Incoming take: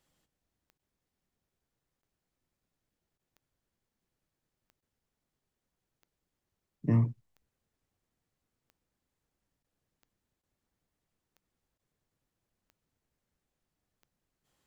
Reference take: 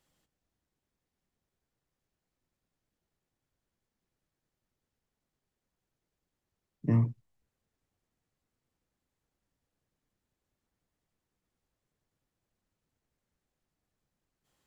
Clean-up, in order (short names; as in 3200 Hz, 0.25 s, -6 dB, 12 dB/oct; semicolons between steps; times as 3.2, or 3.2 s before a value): de-click; interpolate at 0.78/2.02/3.18/4.81/9.63/10.42/11.78, 11 ms